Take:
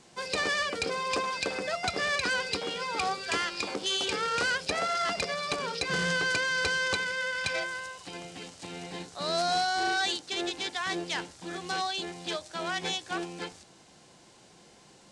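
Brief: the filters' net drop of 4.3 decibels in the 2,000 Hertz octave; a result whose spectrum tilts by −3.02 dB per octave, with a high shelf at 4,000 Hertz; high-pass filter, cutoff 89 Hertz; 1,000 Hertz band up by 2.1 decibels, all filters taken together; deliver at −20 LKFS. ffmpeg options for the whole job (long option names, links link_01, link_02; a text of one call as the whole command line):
ffmpeg -i in.wav -af "highpass=89,equalizer=frequency=1000:width_type=o:gain=5.5,equalizer=frequency=2000:width_type=o:gain=-7.5,highshelf=frequency=4000:gain=-6.5,volume=11.5dB" out.wav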